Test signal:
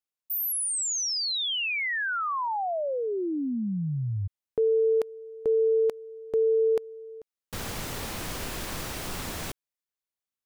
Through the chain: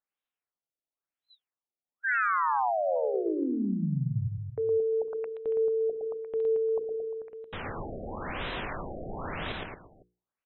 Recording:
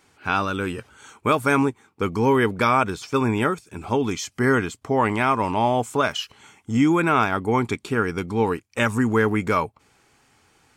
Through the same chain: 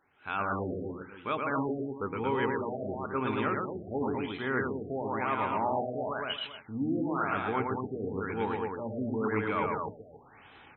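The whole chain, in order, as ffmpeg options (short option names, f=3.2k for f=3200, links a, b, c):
-af "lowshelf=f=310:g=-6,bandreject=f=60:t=h:w=6,bandreject=f=120:t=h:w=6,bandreject=f=180:t=h:w=6,bandreject=f=240:t=h:w=6,bandreject=f=300:t=h:w=6,bandreject=f=360:t=h:w=6,bandreject=f=420:t=h:w=6,bandreject=f=480:t=h:w=6,areverse,acompressor=threshold=-33dB:ratio=4:attack=1.9:release=753:knee=1:detection=rms,areverse,aecho=1:1:114|225|350|505:0.708|0.596|0.158|0.141,afftfilt=real='re*lt(b*sr/1024,730*pow(4100/730,0.5+0.5*sin(2*PI*0.97*pts/sr)))':imag='im*lt(b*sr/1024,730*pow(4100/730,0.5+0.5*sin(2*PI*0.97*pts/sr)))':win_size=1024:overlap=0.75,volume=5dB"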